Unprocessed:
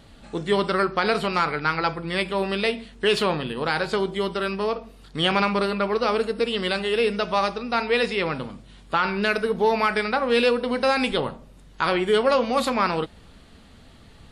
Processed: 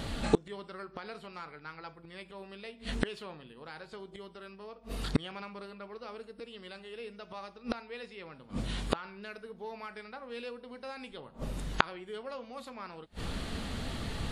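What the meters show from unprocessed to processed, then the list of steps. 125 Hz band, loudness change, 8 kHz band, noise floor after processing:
-7.5 dB, -16.5 dB, -9.0 dB, -56 dBFS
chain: inverted gate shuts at -23 dBFS, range -34 dB; trim +12 dB

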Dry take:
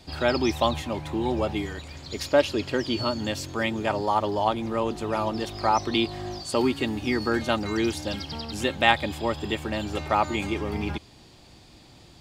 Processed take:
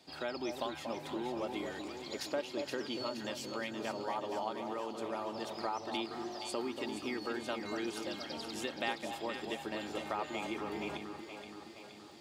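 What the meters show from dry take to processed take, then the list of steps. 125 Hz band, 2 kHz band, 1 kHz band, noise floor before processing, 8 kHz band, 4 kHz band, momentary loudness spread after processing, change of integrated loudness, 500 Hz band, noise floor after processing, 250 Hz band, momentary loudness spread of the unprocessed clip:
-20.5 dB, -12.5 dB, -13.0 dB, -51 dBFS, -9.0 dB, -11.5 dB, 4 LU, -12.5 dB, -12.0 dB, -51 dBFS, -12.5 dB, 9 LU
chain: crackle 48 per s -51 dBFS; gain riding 2 s; high-pass 240 Hz 12 dB/octave; compression 2.5:1, threshold -28 dBFS, peak gain reduction 11 dB; on a send: echo whose repeats swap between lows and highs 236 ms, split 1 kHz, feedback 75%, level -5 dB; on the sum: trim -9 dB

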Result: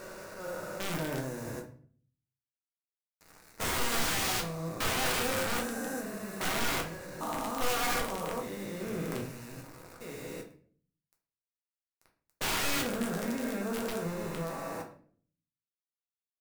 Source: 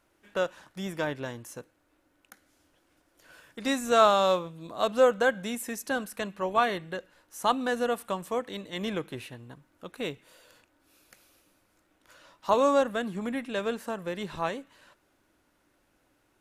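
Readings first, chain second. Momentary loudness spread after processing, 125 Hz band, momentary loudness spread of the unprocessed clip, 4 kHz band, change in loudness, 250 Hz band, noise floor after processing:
15 LU, +3.0 dB, 18 LU, +1.0 dB, -4.5 dB, -3.0 dB, under -85 dBFS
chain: spectrogram pixelated in time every 400 ms; word length cut 8-bit, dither none; peaking EQ 3.2 kHz -15 dB 0.38 oct; integer overflow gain 28.5 dB; simulated room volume 52 m³, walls mixed, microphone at 0.56 m

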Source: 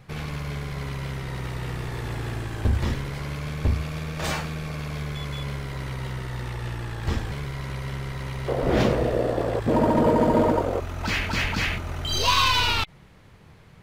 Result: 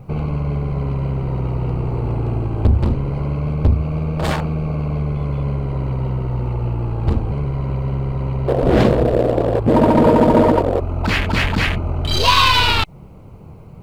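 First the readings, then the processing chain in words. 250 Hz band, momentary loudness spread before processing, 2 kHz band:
+8.5 dB, 13 LU, +5.5 dB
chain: local Wiener filter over 25 samples; peaking EQ 6.1 kHz -5 dB 0.38 oct; in parallel at +1 dB: compression, threshold -31 dBFS, peak gain reduction 14 dB; on the sum: bit crusher 12-bit; loudspeaker Doppler distortion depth 0.12 ms; trim +6 dB

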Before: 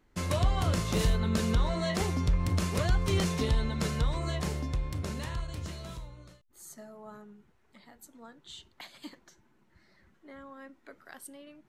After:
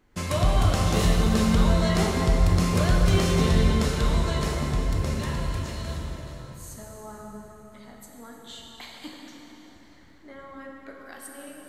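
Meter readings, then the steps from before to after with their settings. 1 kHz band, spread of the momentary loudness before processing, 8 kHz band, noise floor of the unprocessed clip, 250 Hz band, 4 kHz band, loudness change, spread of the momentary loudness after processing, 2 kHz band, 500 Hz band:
+7.0 dB, 20 LU, +6.0 dB, -67 dBFS, +8.0 dB, +6.0 dB, +7.0 dB, 21 LU, +6.5 dB, +7.0 dB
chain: plate-style reverb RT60 4.3 s, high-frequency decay 0.7×, DRR -1.5 dB; trim +3 dB

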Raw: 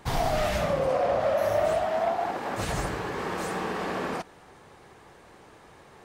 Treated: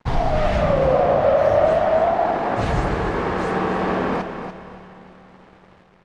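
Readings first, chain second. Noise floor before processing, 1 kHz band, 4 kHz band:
-53 dBFS, +8.0 dB, +1.5 dB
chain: bass shelf 67 Hz +5.5 dB; hum notches 50/100 Hz; level rider gain up to 3.5 dB; in parallel at -0.5 dB: peak limiter -20 dBFS, peak gain reduction 6.5 dB; on the sum: crossover distortion -41.5 dBFS; tape spacing loss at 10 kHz 22 dB; on a send: feedback delay 291 ms, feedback 25%, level -9 dB; on the sum: Schroeder reverb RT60 4 s, combs from 27 ms, DRR 13 dB; trim +2 dB

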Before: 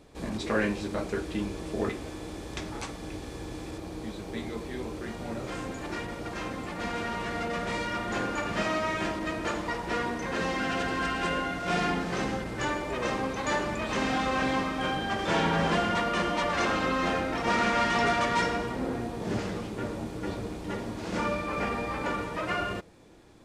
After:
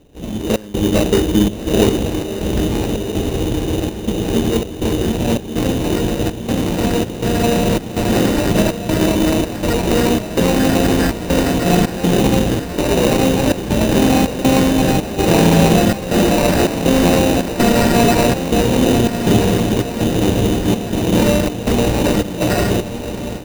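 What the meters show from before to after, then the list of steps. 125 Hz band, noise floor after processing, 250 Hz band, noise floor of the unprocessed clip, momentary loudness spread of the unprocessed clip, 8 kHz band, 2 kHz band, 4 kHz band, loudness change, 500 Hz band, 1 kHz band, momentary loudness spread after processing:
+19.0 dB, -27 dBFS, +18.0 dB, -40 dBFS, 11 LU, +18.5 dB, +6.0 dB, +13.5 dB, +14.5 dB, +15.5 dB, +7.5 dB, 7 LU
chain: median filter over 41 samples; steep low-pass 11 kHz; trance gate "xxx.xxxx.xxx." 81 bpm -24 dB; on a send: echo that smears into a reverb 1341 ms, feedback 45%, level -10 dB; on the sum: level rider gain up to 14 dB; in parallel at +1 dB: peak limiter -13 dBFS, peak gain reduction 8 dB; on the sum: sample-rate reducer 3.3 kHz, jitter 0%; peaking EQ 1.3 kHz -5 dB 0.31 oct

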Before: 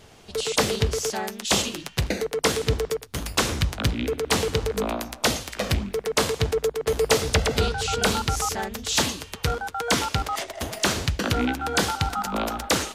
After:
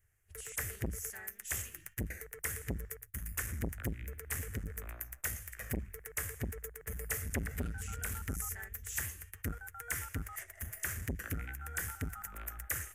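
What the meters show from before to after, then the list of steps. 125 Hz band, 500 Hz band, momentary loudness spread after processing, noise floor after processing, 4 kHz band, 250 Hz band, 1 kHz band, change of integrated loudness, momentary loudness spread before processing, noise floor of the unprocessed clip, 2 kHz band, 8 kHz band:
-12.5 dB, -24.5 dB, 6 LU, -61 dBFS, -28.0 dB, -16.5 dB, -23.0 dB, -15.0 dB, 6 LU, -47 dBFS, -13.0 dB, -12.5 dB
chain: gate -40 dBFS, range -12 dB; FFT filter 100 Hz 0 dB, 230 Hz -28 dB, 350 Hz -19 dB, 960 Hz -22 dB, 1.8 kHz -1 dB, 4.1 kHz -29 dB, 6.6 kHz -8 dB, 13 kHz +7 dB; transformer saturation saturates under 370 Hz; trim -6.5 dB

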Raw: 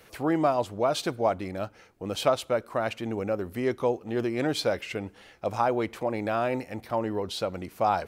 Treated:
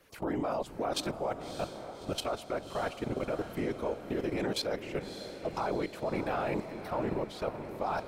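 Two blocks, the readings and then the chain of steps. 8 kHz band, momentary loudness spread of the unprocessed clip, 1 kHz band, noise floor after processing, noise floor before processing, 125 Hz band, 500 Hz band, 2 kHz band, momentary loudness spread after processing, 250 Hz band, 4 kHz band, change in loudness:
-4.0 dB, 9 LU, -7.0 dB, -47 dBFS, -55 dBFS, -5.0 dB, -6.5 dB, -5.5 dB, 6 LU, -5.5 dB, -4.0 dB, -6.5 dB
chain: whisper effect; level held to a coarse grid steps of 16 dB; echo that smears into a reverb 604 ms, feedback 54%, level -10 dB

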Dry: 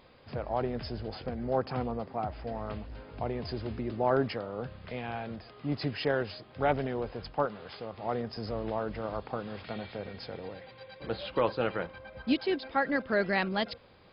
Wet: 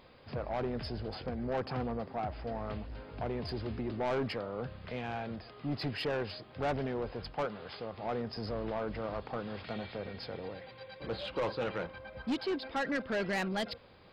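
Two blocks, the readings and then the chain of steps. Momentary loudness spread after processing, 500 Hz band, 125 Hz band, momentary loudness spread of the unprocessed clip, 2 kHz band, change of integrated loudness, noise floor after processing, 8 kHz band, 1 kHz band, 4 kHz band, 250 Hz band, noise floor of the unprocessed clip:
9 LU, -4.0 dB, -2.5 dB, 12 LU, -4.0 dB, -3.5 dB, -54 dBFS, no reading, -4.5 dB, -1.5 dB, -3.0 dB, -54 dBFS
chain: saturation -28 dBFS, distortion -9 dB

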